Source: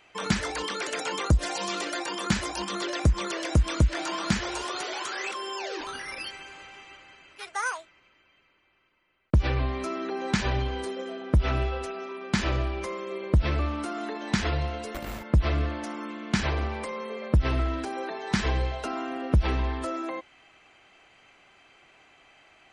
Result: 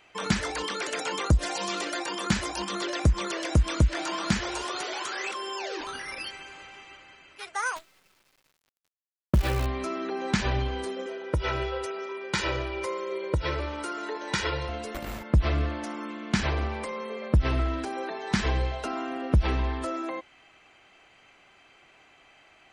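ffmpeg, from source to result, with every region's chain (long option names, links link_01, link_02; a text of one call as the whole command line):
ffmpeg -i in.wav -filter_complex "[0:a]asettb=1/sr,asplit=3[link_01][link_02][link_03];[link_01]atrim=end=7.764[link_04];[link_02]atrim=start=7.76:end=9.66,asetpts=PTS-STARTPTS,afade=type=in:duration=0.004:curve=qsin,afade=type=out:start_time=1.896:duration=0.004:curve=qsin,aecho=1:1:5.3:0.38,atrim=end_sample=83790,acrusher=bits=7:dc=4:mix=0:aa=0.000001[link_05];[link_03]atrim=start=9.656[link_06];[link_04][link_05]acrossfade=duration=0.004:curve1=hsin:curve2=qsin[link_07];[link_07][link_06]acrossfade=duration=0.004:curve1=qsin:curve2=hsin,asettb=1/sr,asplit=3[link_08][link_09][link_10];[link_08]atrim=end=11.064[link_11];[link_09]atrim=start=11.06:end=14.69,asetpts=PTS-STARTPTS,afade=type=in:duration=0.004:curve=qsin,afade=type=out:start_time=3.626:duration=0.004:curve=qsin,highpass=frequency=240:poles=1,aecho=1:1:2.1:0.75,atrim=end_sample=160083[link_12];[link_10]atrim=start=14.686[link_13];[link_11][link_12]acrossfade=duration=0.004:curve1=hsin:curve2=qsin[link_14];[link_14][link_13]acrossfade=duration=0.004:curve1=qsin:curve2=hsin" out.wav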